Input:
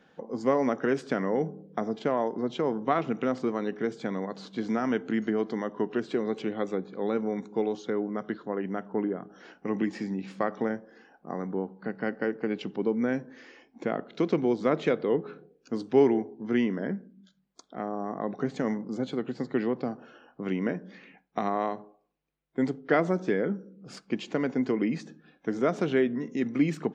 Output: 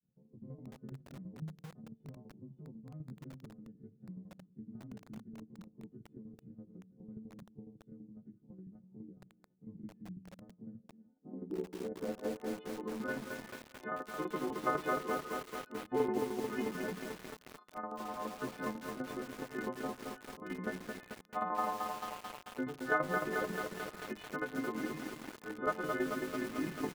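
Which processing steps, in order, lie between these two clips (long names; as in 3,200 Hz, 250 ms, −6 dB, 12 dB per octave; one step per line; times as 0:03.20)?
every partial snapped to a pitch grid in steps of 3 semitones
elliptic low-pass filter 4,500 Hz, stop band 40 dB
parametric band 3,300 Hz +8.5 dB 0.32 octaves
tuned comb filter 470 Hz, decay 0.55 s, mix 60%
granular cloud 121 ms, grains 19 per second, spray 20 ms, pitch spread up and down by 0 semitones
shaped tremolo saw down 12 Hz, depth 65%
repeating echo 312 ms, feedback 38%, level −22.5 dB
low-pass filter sweep 140 Hz → 1,300 Hz, 0:10.61–0:12.90
feedback echo at a low word length 220 ms, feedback 80%, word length 8 bits, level −3.5 dB
level +1 dB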